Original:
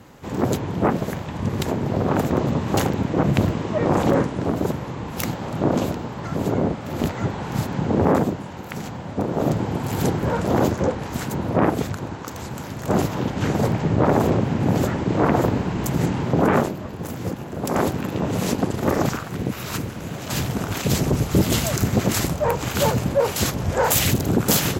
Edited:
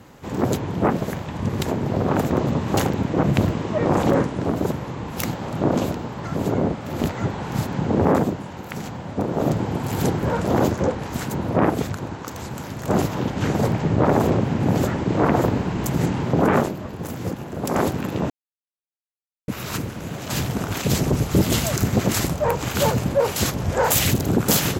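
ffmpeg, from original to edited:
-filter_complex "[0:a]asplit=3[s0][s1][s2];[s0]atrim=end=18.3,asetpts=PTS-STARTPTS,afade=t=out:st=18.296:d=0.004:c=hsin[s3];[s1]atrim=start=18.3:end=19.48,asetpts=PTS-STARTPTS,volume=0[s4];[s2]atrim=start=19.48,asetpts=PTS-STARTPTS,afade=t=in:d=0.004:c=hsin[s5];[s3][s4][s5]concat=n=3:v=0:a=1"

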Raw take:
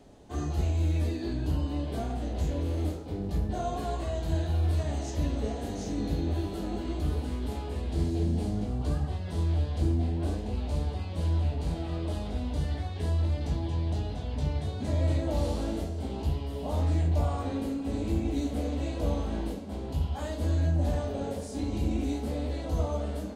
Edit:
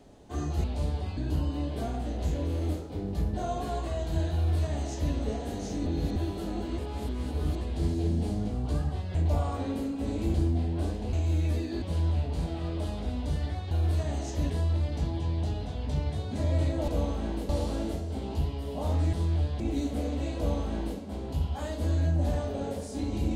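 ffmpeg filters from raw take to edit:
-filter_complex "[0:a]asplit=17[s0][s1][s2][s3][s4][s5][s6][s7][s8][s9][s10][s11][s12][s13][s14][s15][s16];[s0]atrim=end=0.642[s17];[s1]atrim=start=10.568:end=11.102[s18];[s2]atrim=start=1.328:end=6.022[s19];[s3]atrim=start=6.018:end=6.322,asetpts=PTS-STARTPTS,areverse[s20];[s4]atrim=start=6.318:end=6.942[s21];[s5]atrim=start=6.938:end=7.772,asetpts=PTS-STARTPTS,areverse[s22];[s6]atrim=start=7.768:end=9.312[s23];[s7]atrim=start=17.008:end=18.202[s24];[s8]atrim=start=9.778:end=10.572[s25];[s9]atrim=start=0.638:end=1.332[s26];[s10]atrim=start=11.098:end=12.992[s27];[s11]atrim=start=4.508:end=5.302[s28];[s12]atrim=start=12.988:end=15.372[s29];[s13]atrim=start=18.968:end=19.582[s30];[s14]atrim=start=15.368:end=17.012[s31];[s15]atrim=start=9.308:end=9.782[s32];[s16]atrim=start=18.198[s33];[s17][s18]acrossfade=d=0.004:c1=hsin:c2=hsin[s34];[s34][s19]acrossfade=d=0.004:c1=hsin:c2=hsin[s35];[s35][s20]acrossfade=d=0.004:c1=hsin:c2=hsin[s36];[s36][s21]acrossfade=d=0.004:c1=hsin:c2=hsin[s37];[s37][s22]acrossfade=d=0.004:c1=hsin:c2=hsin[s38];[s38][s23]acrossfade=d=0.004:c1=hsin:c2=hsin[s39];[s39][s24]acrossfade=d=0.004:c1=hsin:c2=hsin[s40];[s40][s25]acrossfade=d=0.004:c1=hsin:c2=hsin[s41];[s41][s26]acrossfade=d=0.004:c1=hsin:c2=hsin[s42];[s42][s27]acrossfade=d=0.004:c1=hsin:c2=hsin[s43];[s43][s28]acrossfade=d=0.004:c1=hsin:c2=hsin[s44];[s44][s29]acrossfade=d=0.004:c1=hsin:c2=hsin[s45];[s45][s30]acrossfade=d=0.004:c1=hsin:c2=hsin[s46];[s46][s31]acrossfade=d=0.004:c1=hsin:c2=hsin[s47];[s47][s32]acrossfade=d=0.004:c1=hsin:c2=hsin[s48];[s48][s33]acrossfade=d=0.004:c1=hsin:c2=hsin"

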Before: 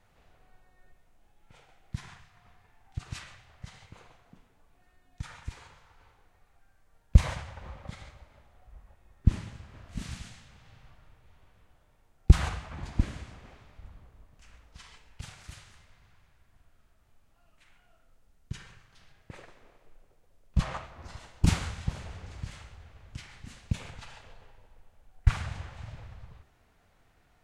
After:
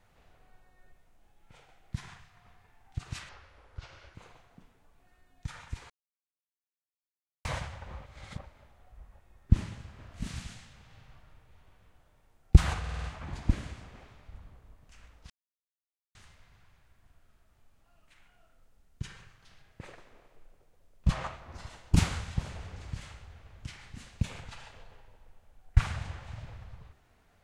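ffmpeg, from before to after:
-filter_complex "[0:a]asplit=14[s0][s1][s2][s3][s4][s5][s6][s7][s8][s9][s10][s11][s12][s13];[s0]atrim=end=3.294[s14];[s1]atrim=start=3.29:end=3.9,asetpts=PTS-STARTPTS,asetrate=31311,aresample=44100[s15];[s2]atrim=start=3.896:end=5.65,asetpts=PTS-STARTPTS,afade=t=out:st=1.75:d=0.004:c=hsin[s16];[s3]atrim=start=5.65:end=7.2,asetpts=PTS-STARTPTS,volume=0[s17];[s4]atrim=start=7.2:end=7.812,asetpts=PTS-STARTPTS,afade=t=in:d=0.004:c=hsin[s18];[s5]atrim=start=7.808:end=8.202,asetpts=PTS-STARTPTS,areverse[s19];[s6]atrim=start=8.198:end=12.592[s20];[s7]atrim=start=12.538:end=12.592[s21];[s8]atrim=start=12.538:end=12.592[s22];[s9]atrim=start=12.538:end=12.592[s23];[s10]atrim=start=12.538:end=12.592[s24];[s11]atrim=start=12.538:end=14.8,asetpts=PTS-STARTPTS,afade=t=out:st=2.258:d=0.004:c=hsin[s25];[s12]atrim=start=14.8:end=15.65,asetpts=PTS-STARTPTS,volume=0[s26];[s13]atrim=start=15.65,asetpts=PTS-STARTPTS,afade=t=in:d=0.004:c=hsin[s27];[s14][s15]acrossfade=d=0.004:c1=hsin:c2=hsin[s28];[s16][s17][s18]concat=n=3:v=0:a=1[s29];[s28][s29]acrossfade=d=0.004:c1=hsin:c2=hsin[s30];[s30][s19]acrossfade=d=0.004:c1=hsin:c2=hsin[s31];[s31][s20]acrossfade=d=0.004:c1=hsin:c2=hsin[s32];[s32][s21]acrossfade=d=0.004:c1=hsin:c2=hsin[s33];[s33][s22]acrossfade=d=0.004:c1=hsin:c2=hsin[s34];[s34][s23]acrossfade=d=0.004:c1=hsin:c2=hsin[s35];[s35][s24]acrossfade=d=0.004:c1=hsin:c2=hsin[s36];[s25][s26][s27]concat=n=3:v=0:a=1[s37];[s36][s37]acrossfade=d=0.004:c1=hsin:c2=hsin"

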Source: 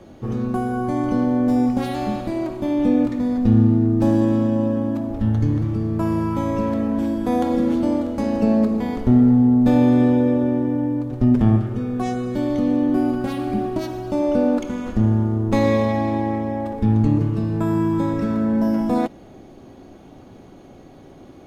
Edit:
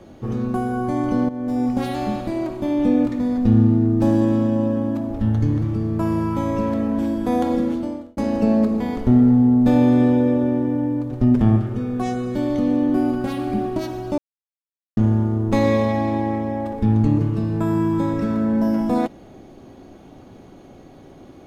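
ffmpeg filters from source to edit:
-filter_complex "[0:a]asplit=5[s0][s1][s2][s3][s4];[s0]atrim=end=1.29,asetpts=PTS-STARTPTS,afade=t=out:st=1.286:d=0.004:c=hsin:silence=0.223872[s5];[s1]atrim=start=1.29:end=8.17,asetpts=PTS-STARTPTS,afade=t=in:d=0.52:silence=0.223872,afade=t=out:st=6.23:d=0.65[s6];[s2]atrim=start=8.17:end=14.18,asetpts=PTS-STARTPTS,afade=t=in:d=0.004:c=hsin,afade=t=out:st=6.006:d=0.004:c=hsin[s7];[s3]atrim=start=14.18:end=14.97,asetpts=PTS-STARTPTS,volume=0[s8];[s4]atrim=start=14.97,asetpts=PTS-STARTPTS,afade=t=in:d=0.004:c=hsin[s9];[s5][s6][s7][s8][s9]concat=n=5:v=0:a=1"

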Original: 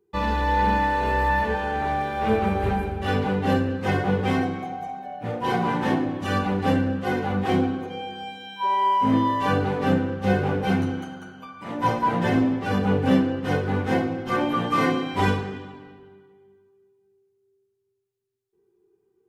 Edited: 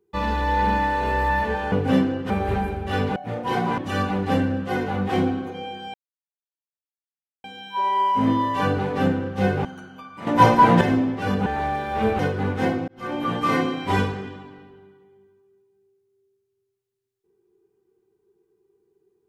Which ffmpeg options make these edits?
-filter_complex "[0:a]asplit=12[s0][s1][s2][s3][s4][s5][s6][s7][s8][s9][s10][s11];[s0]atrim=end=1.722[s12];[s1]atrim=start=12.898:end=13.482[s13];[s2]atrim=start=2.448:end=3.312[s14];[s3]atrim=start=5.128:end=5.752[s15];[s4]atrim=start=6.138:end=8.3,asetpts=PTS-STARTPTS,afade=t=out:st=2.158:d=0.004:c=hsin,apad=pad_dur=1.5[s16];[s5]atrim=start=8.3:end=10.512,asetpts=PTS-STARTPTS,afade=t=in:d=0.004:c=hsin[s17];[s6]atrim=start=11.088:end=11.712[s18];[s7]atrim=start=11.708:end=12.252,asetpts=PTS-STARTPTS,volume=2.66[s19];[s8]atrim=start=12.248:end=12.902[s20];[s9]atrim=start=1.718:end=2.452[s21];[s10]atrim=start=13.478:end=14.17,asetpts=PTS-STARTPTS,afade=t=out:st=0.688:d=0.004:c=hsin[s22];[s11]atrim=start=14.17,asetpts=PTS-STARTPTS,afade=t=in:d=0.43[s23];[s12][s13]acrossfade=d=0.004:c1=hsin:c2=hsin[s24];[s24][s14]acrossfade=d=0.004:c1=hsin:c2=hsin[s25];[s25][s15]acrossfade=d=0.004:c1=hsin:c2=hsin[s26];[s16][s17]concat=n=2:v=0:a=1[s27];[s26][s27]acrossfade=d=0.004:c1=hsin:c2=hsin[s28];[s28][s18]acrossfade=d=0.004:c1=hsin:c2=hsin[s29];[s29][s19]acrossfade=d=0.004:c1=hsin:c2=hsin[s30];[s30][s20]acrossfade=d=0.004:c1=hsin:c2=hsin[s31];[s31][s21]acrossfade=d=0.004:c1=hsin:c2=hsin[s32];[s22][s23]concat=n=2:v=0:a=1[s33];[s32][s33]acrossfade=d=0.004:c1=hsin:c2=hsin"

